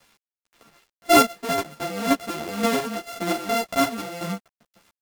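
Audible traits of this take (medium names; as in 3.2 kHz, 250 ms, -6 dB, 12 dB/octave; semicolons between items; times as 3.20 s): a buzz of ramps at a fixed pitch in blocks of 64 samples; chopped level 1.9 Hz, depth 60%, duty 30%; a quantiser's noise floor 10-bit, dither none; a shimmering, thickened sound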